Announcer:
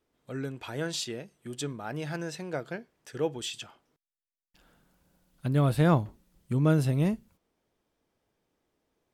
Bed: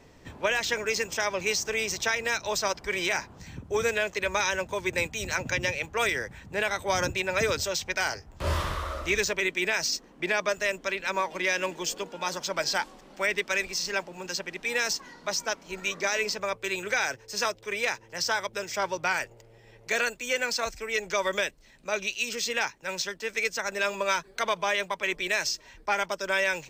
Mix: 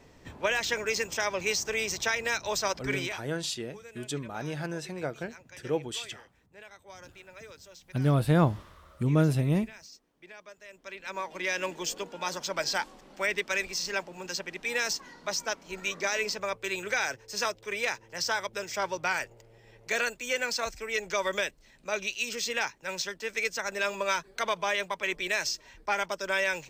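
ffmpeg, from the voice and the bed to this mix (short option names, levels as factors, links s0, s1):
-filter_complex "[0:a]adelay=2500,volume=1[s0];[1:a]volume=8.41,afade=t=out:st=2.93:d=0.28:silence=0.0944061,afade=t=in:st=10.68:d=1.04:silence=0.1[s1];[s0][s1]amix=inputs=2:normalize=0"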